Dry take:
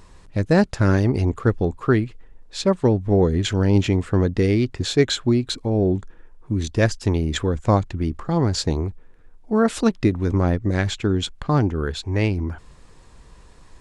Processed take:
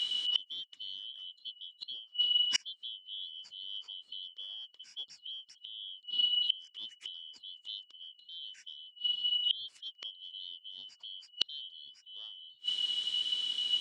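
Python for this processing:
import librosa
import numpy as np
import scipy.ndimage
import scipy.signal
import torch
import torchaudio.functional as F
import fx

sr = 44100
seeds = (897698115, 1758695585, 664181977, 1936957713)

y = fx.band_shuffle(x, sr, order='2413')
y = fx.weighting(y, sr, curve='D')
y = fx.gate_flip(y, sr, shuts_db=-14.0, range_db=-38)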